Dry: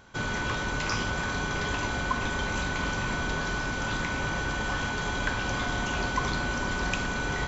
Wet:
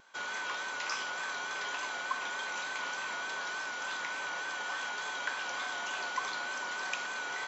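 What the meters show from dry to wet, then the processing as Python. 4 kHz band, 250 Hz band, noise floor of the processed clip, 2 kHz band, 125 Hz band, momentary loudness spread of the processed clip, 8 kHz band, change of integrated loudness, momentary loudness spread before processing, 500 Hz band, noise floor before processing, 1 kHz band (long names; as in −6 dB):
−4.5 dB, −22.0 dB, −39 dBFS, −5.0 dB, below −30 dB, 1 LU, can't be measured, −6.0 dB, 1 LU, −11.0 dB, −31 dBFS, −5.5 dB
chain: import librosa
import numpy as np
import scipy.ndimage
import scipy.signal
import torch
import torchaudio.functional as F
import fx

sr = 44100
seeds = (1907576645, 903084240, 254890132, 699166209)

y = scipy.signal.sosfilt(scipy.signal.butter(2, 710.0, 'highpass', fs=sr, output='sos'), x)
y = fx.vibrato(y, sr, rate_hz=3.4, depth_cents=45.0)
y = y * librosa.db_to_amplitude(-4.5)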